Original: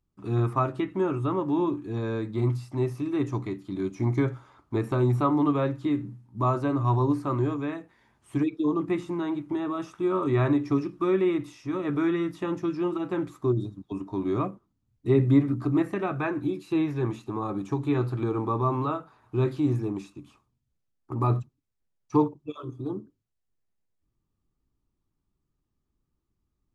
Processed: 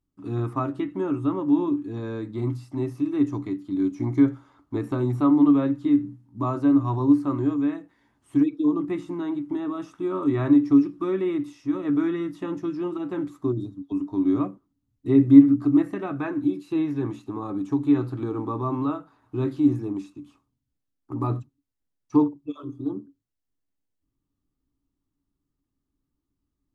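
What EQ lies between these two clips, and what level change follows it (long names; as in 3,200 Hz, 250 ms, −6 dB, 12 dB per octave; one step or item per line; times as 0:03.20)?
parametric band 280 Hz +14 dB 0.21 octaves
notch filter 2,400 Hz, Q 17
−3.0 dB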